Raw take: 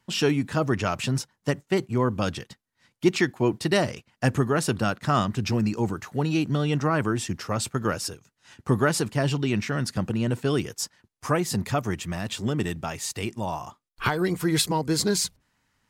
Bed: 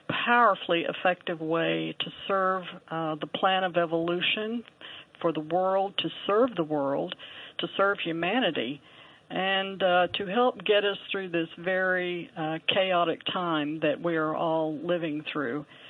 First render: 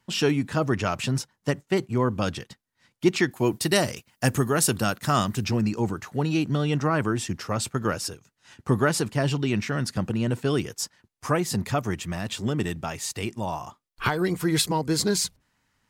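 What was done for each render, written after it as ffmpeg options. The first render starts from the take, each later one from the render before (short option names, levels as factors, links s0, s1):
-filter_complex "[0:a]asettb=1/sr,asplit=3[s0][s1][s2];[s0]atrim=end=3.314[s3];[s1]atrim=start=3.31:end=5.45,asetpts=PTS-STARTPTS,afade=t=in:d=0.004:c=qsin,afade=t=out:st=2.136:d=0.004:c=qsin,aemphasis=mode=production:type=50fm[s4];[s2]atrim=start=5.446[s5];[s3][s4]acrossfade=d=0.004:c1=hsin:c2=qsin[s6];[s6][s5]acrossfade=d=0.004:c1=qsin:c2=hsin"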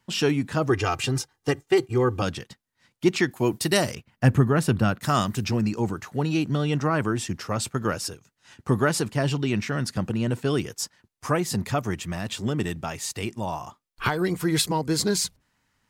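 -filter_complex "[0:a]asettb=1/sr,asplit=3[s0][s1][s2];[s0]atrim=end=0.694[s3];[s1]atrim=start=0.69:end=2.22,asetpts=PTS-STARTPTS,afade=t=in:d=0.004:c=qsin,afade=t=out:st=1.526:d=0.004:c=qsin,aecho=1:1:2.5:0.87,atrim=end_sample=67473[s4];[s2]atrim=start=2.216[s5];[s3][s4]acrossfade=d=0.004:c1=hsin:c2=qsin[s6];[s6][s5]acrossfade=d=0.004:c1=qsin:c2=hsin,asettb=1/sr,asplit=3[s7][s8][s9];[s7]atrim=end=3.954[s10];[s8]atrim=start=3.95:end=5.01,asetpts=PTS-STARTPTS,afade=t=in:d=0.004:c=qsin,afade=t=out:st=1.056:d=0.004:c=qsin,bass=f=250:g=7,treble=f=4000:g=-14[s11];[s9]atrim=start=5.006[s12];[s10][s11]acrossfade=d=0.004:c1=hsin:c2=qsin[s13];[s13][s12]acrossfade=d=0.004:c1=qsin:c2=hsin"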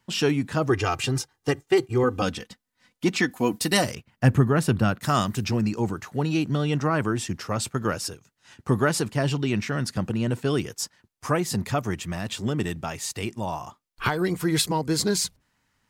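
-filter_complex "[0:a]asettb=1/sr,asplit=3[s0][s1][s2];[s0]atrim=end=2.034[s3];[s1]atrim=start=2.03:end=3.84,asetpts=PTS-STARTPTS,afade=t=in:d=0.004:c=qsin,afade=t=out:st=1.806:d=0.004:c=qsin,aecho=1:1:4:0.56,atrim=end_sample=79821[s4];[s2]atrim=start=3.836[s5];[s3][s4]acrossfade=d=0.004:c1=hsin:c2=qsin[s6];[s6][s5]acrossfade=d=0.004:c1=qsin:c2=hsin"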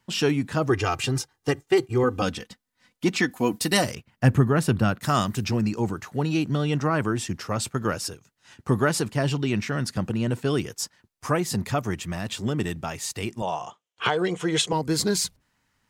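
-filter_complex "[0:a]asettb=1/sr,asplit=3[s0][s1][s2];[s0]atrim=end=13.424[s3];[s1]atrim=start=13.42:end=14.73,asetpts=PTS-STARTPTS,afade=t=in:d=0.004:c=qsin,afade=t=out:st=1.306:d=0.004:c=qsin,highpass=170,equalizer=f=260:t=q:w=4:g=-9,equalizer=f=480:t=q:w=4:g=7,equalizer=f=720:t=q:w=4:g=4,equalizer=f=3100:t=q:w=4:g=10,equalizer=f=4600:t=q:w=4:g=-8,equalizer=f=6600:t=q:w=4:g=4,lowpass=f=8200:w=0.5412,lowpass=f=8200:w=1.3066[s4];[s2]atrim=start=14.726[s5];[s3][s4]acrossfade=d=0.004:c1=hsin:c2=qsin[s6];[s6][s5]acrossfade=d=0.004:c1=qsin:c2=hsin"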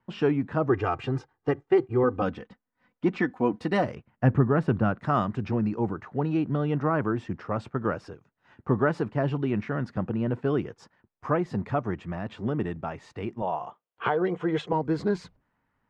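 -af "lowpass=1400,equalizer=f=64:w=0.4:g=-4.5"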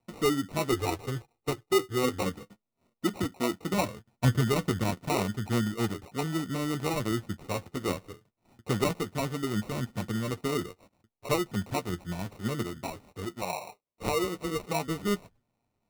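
-af "flanger=delay=8.4:depth=3.1:regen=34:speed=0.71:shape=sinusoidal,acrusher=samples=27:mix=1:aa=0.000001"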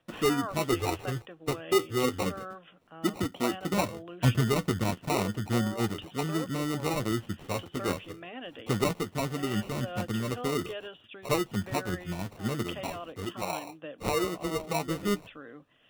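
-filter_complex "[1:a]volume=0.158[s0];[0:a][s0]amix=inputs=2:normalize=0"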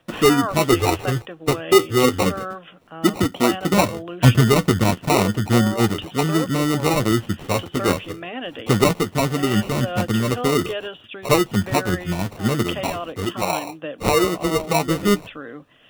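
-af "volume=3.55"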